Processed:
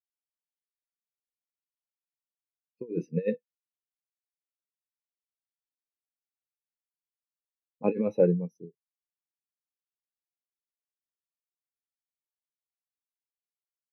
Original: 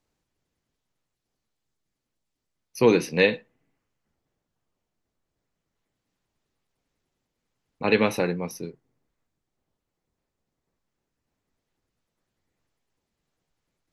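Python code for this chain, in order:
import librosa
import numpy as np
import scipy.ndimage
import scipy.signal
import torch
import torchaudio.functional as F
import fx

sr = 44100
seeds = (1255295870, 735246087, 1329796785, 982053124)

y = fx.over_compress(x, sr, threshold_db=-22.0, ratio=-0.5)
y = fx.env_lowpass(y, sr, base_hz=870.0, full_db=-27.0)
y = fx.spectral_expand(y, sr, expansion=2.5)
y = F.gain(torch.from_numpy(y), -3.0).numpy()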